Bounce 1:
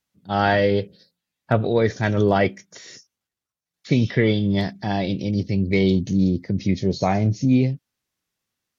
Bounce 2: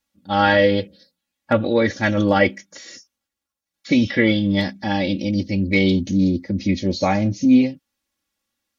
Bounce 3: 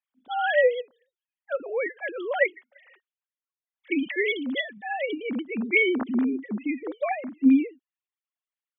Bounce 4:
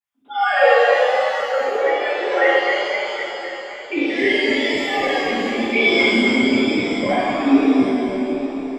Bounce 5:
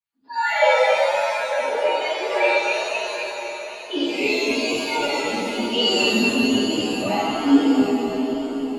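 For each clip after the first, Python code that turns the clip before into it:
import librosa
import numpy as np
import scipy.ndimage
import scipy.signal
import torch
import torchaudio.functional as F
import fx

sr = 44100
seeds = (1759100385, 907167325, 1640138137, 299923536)

y1 = fx.dynamic_eq(x, sr, hz=2700.0, q=0.81, threshold_db=-39.0, ratio=4.0, max_db=3)
y1 = y1 + 0.9 * np.pad(y1, (int(3.6 * sr / 1000.0), 0))[:len(y1)]
y2 = fx.sine_speech(y1, sr)
y2 = fx.low_shelf(y2, sr, hz=350.0, db=-7.5)
y2 = fx.rider(y2, sr, range_db=5, speed_s=2.0)
y2 = y2 * librosa.db_to_amplitude(-4.0)
y3 = fx.reverse_delay_fb(y2, sr, ms=128, feedback_pct=83, wet_db=-5)
y3 = fx.vibrato(y3, sr, rate_hz=1.1, depth_cents=77.0)
y3 = fx.rev_shimmer(y3, sr, seeds[0], rt60_s=1.2, semitones=7, shimmer_db=-8, drr_db=-9.5)
y3 = y3 * librosa.db_to_amplitude(-3.5)
y4 = fx.partial_stretch(y3, sr, pct=111)
y4 = fx.echo_swing(y4, sr, ms=928, ratio=3, feedback_pct=37, wet_db=-16.5)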